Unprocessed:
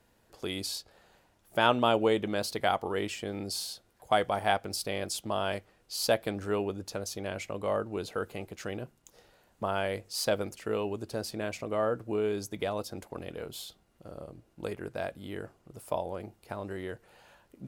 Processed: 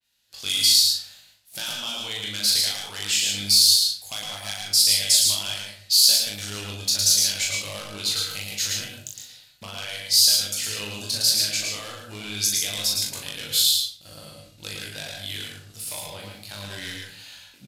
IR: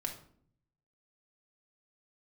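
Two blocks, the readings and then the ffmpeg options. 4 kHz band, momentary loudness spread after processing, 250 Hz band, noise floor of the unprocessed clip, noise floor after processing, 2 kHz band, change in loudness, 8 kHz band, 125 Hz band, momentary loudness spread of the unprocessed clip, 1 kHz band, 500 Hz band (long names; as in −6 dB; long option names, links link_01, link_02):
+19.5 dB, 21 LU, −6.0 dB, −68 dBFS, −53 dBFS, +4.5 dB, +13.0 dB, +21.0 dB, +1.5 dB, 14 LU, −10.0 dB, −12.0 dB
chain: -filter_complex "[0:a]agate=range=-33dB:threshold=-56dB:ratio=3:detection=peak,equalizer=frequency=100:width_type=o:width=0.67:gain=4,equalizer=frequency=400:width_type=o:width=0.67:gain=-7,equalizer=frequency=1600:width_type=o:width=0.67:gain=11,equalizer=frequency=4000:width_type=o:width=0.67:gain=7,equalizer=frequency=10000:width_type=o:width=0.67:gain=-3,acompressor=threshold=-33dB:ratio=16,flanger=delay=19:depth=2.2:speed=1.4,asoftclip=type=hard:threshold=-34dB,aexciter=amount=6.4:drive=7:freq=2300,asplit=2[link_01][link_02];[link_02]adelay=39,volume=-3.5dB[link_03];[link_01][link_03]amix=inputs=2:normalize=0,aresample=32000,aresample=44100,asplit=2[link_04][link_05];[1:a]atrim=start_sample=2205,adelay=110[link_06];[link_05][link_06]afir=irnorm=-1:irlink=0,volume=-2.5dB[link_07];[link_04][link_07]amix=inputs=2:normalize=0,adynamicequalizer=threshold=0.02:dfrequency=4800:dqfactor=0.7:tfrequency=4800:tqfactor=0.7:attack=5:release=100:ratio=0.375:range=3.5:mode=boostabove:tftype=highshelf,volume=-1dB"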